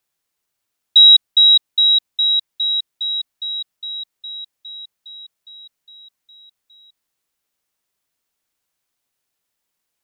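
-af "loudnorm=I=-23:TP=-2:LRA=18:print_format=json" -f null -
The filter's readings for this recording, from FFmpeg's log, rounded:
"input_i" : "-11.9",
"input_tp" : "-3.5",
"input_lra" : "23.2",
"input_thresh" : "-25.3",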